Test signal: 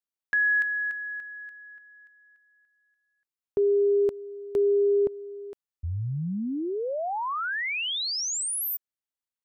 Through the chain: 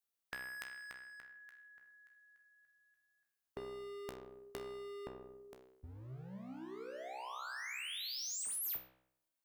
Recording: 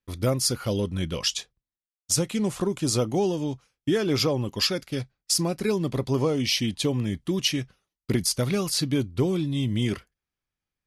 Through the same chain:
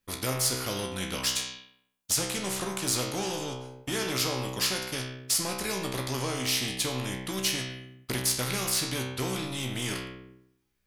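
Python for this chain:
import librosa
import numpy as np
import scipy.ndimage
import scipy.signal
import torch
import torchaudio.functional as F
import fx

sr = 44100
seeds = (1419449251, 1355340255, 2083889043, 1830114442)

p1 = fx.high_shelf(x, sr, hz=8900.0, db=7.5)
p2 = np.sign(p1) * np.maximum(np.abs(p1) - 10.0 ** (-33.0 / 20.0), 0.0)
p3 = p1 + F.gain(torch.from_numpy(p2), -9.0).numpy()
p4 = fx.comb_fb(p3, sr, f0_hz=64.0, decay_s=0.72, harmonics='all', damping=0.3, mix_pct=90)
p5 = fx.spectral_comp(p4, sr, ratio=2.0)
y = F.gain(torch.from_numpy(p5), 5.0).numpy()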